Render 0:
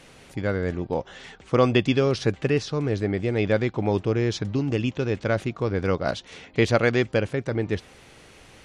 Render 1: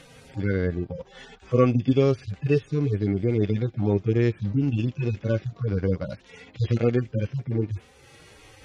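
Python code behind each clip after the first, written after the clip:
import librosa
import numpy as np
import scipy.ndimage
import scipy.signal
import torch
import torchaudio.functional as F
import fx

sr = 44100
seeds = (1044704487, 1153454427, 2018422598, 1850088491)

y = fx.hpss_only(x, sr, part='harmonic')
y = fx.dynamic_eq(y, sr, hz=830.0, q=1.1, threshold_db=-42.0, ratio=4.0, max_db=-7)
y = fx.transient(y, sr, attack_db=0, sustain_db=-5)
y = y * librosa.db_to_amplitude(3.5)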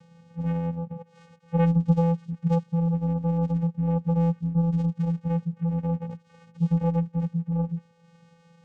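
y = fx.vocoder(x, sr, bands=4, carrier='square', carrier_hz=168.0)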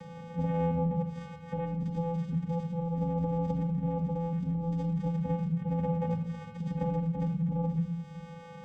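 y = fx.over_compress(x, sr, threshold_db=-28.0, ratio=-1.0)
y = fx.room_shoebox(y, sr, seeds[0], volume_m3=2200.0, walls='furnished', distance_m=2.2)
y = fx.band_squash(y, sr, depth_pct=40)
y = y * librosa.db_to_amplitude(-1.5)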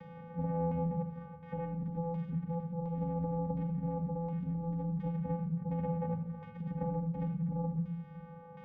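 y = fx.filter_lfo_lowpass(x, sr, shape='saw_down', hz=1.4, low_hz=910.0, high_hz=2600.0, q=1.0)
y = y * librosa.db_to_amplitude(-4.5)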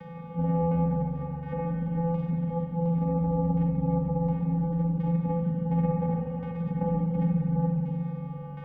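y = fx.rev_spring(x, sr, rt60_s=3.9, pass_ms=(41, 59), chirp_ms=60, drr_db=-1.0)
y = y * librosa.db_to_amplitude(6.0)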